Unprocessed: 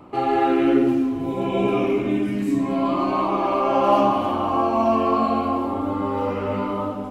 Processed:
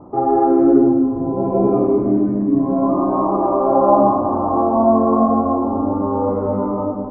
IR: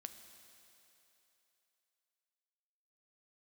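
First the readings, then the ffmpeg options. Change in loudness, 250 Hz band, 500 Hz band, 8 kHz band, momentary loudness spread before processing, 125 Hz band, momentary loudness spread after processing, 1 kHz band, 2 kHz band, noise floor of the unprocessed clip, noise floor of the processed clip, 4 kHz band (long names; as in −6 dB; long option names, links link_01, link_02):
+5.0 dB, +5.5 dB, +5.5 dB, can't be measured, 7 LU, +5.0 dB, 7 LU, +3.0 dB, below −15 dB, −27 dBFS, −23 dBFS, below −35 dB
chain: -filter_complex "[0:a]lowpass=frequency=1000:width=0.5412,lowpass=frequency=1000:width=1.3066,asplit=2[link_01][link_02];[1:a]atrim=start_sample=2205,lowpass=3000[link_03];[link_02][link_03]afir=irnorm=-1:irlink=0,volume=6.5dB[link_04];[link_01][link_04]amix=inputs=2:normalize=0,volume=-1dB"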